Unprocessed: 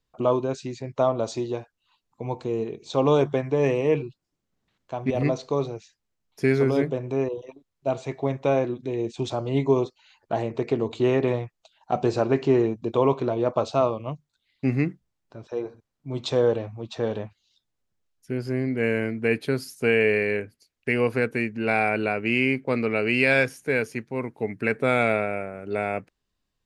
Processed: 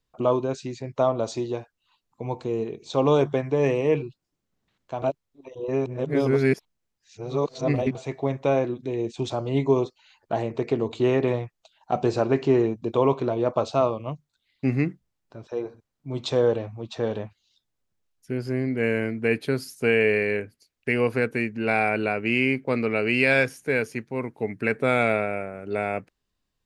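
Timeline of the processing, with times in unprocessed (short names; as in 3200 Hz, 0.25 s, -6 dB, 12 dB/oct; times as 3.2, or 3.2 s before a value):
5.02–7.95 reverse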